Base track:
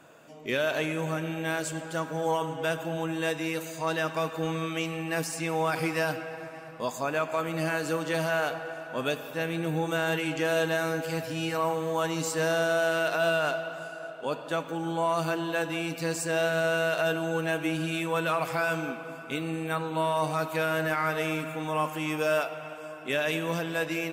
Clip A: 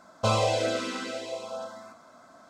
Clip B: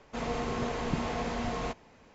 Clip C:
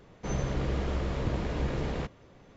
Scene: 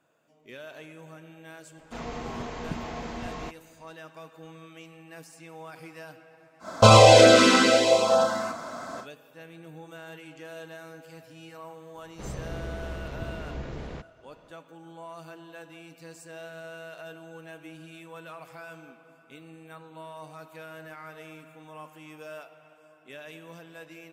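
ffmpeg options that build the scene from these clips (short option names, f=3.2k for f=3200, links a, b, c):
-filter_complex "[0:a]volume=-16dB[a];[2:a]equalizer=f=510:w=6.4:g=-3.5[b];[1:a]alimiter=level_in=18dB:limit=-1dB:release=50:level=0:latency=1[c];[b]atrim=end=2.14,asetpts=PTS-STARTPTS,volume=-3dB,afade=t=in:d=0.004:c=hsin,afade=t=out:st=2.136:d=0.004:c=hsin,adelay=1780[d];[c]atrim=end=2.49,asetpts=PTS-STARTPTS,volume=-2.5dB,afade=t=in:d=0.1,afade=t=out:st=2.39:d=0.1,adelay=6590[e];[3:a]atrim=end=2.56,asetpts=PTS-STARTPTS,volume=-6dB,afade=t=in:d=0.004:c=hsin,afade=t=out:st=2.556:d=0.004:c=hsin,adelay=11950[f];[a][d][e][f]amix=inputs=4:normalize=0"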